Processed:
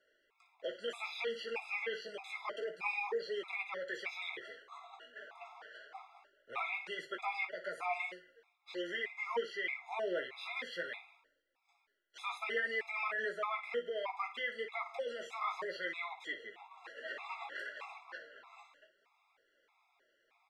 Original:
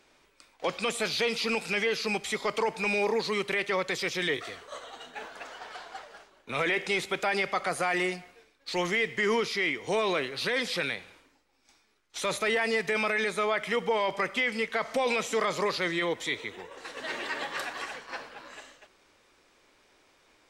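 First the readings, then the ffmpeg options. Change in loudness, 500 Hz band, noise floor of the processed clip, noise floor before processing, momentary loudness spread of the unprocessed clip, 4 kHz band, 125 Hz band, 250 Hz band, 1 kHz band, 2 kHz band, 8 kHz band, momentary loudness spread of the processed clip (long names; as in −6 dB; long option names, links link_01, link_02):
−10.5 dB, −11.0 dB, −77 dBFS, −66 dBFS, 15 LU, −13.0 dB, below −25 dB, −18.0 dB, −9.0 dB, −9.5 dB, −22.5 dB, 15 LU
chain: -filter_complex "[0:a]acrossover=split=420 3400:gain=0.1 1 0.158[link_01][link_02][link_03];[link_01][link_02][link_03]amix=inputs=3:normalize=0,flanger=delay=1.3:depth=7.9:regen=34:speed=0.62:shape=triangular,aecho=1:1:17|58:0.473|0.266,afftfilt=real='re*gt(sin(2*PI*1.6*pts/sr)*(1-2*mod(floor(b*sr/1024/680),2)),0)':imag='im*gt(sin(2*PI*1.6*pts/sr)*(1-2*mod(floor(b*sr/1024/680),2)),0)':win_size=1024:overlap=0.75,volume=-2.5dB"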